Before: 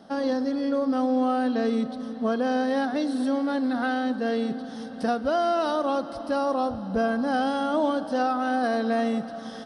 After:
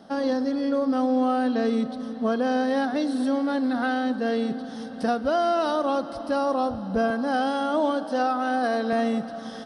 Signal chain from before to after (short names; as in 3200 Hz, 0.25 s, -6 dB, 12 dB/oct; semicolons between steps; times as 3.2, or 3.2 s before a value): 7.1–8.93 HPF 220 Hz; gain +1 dB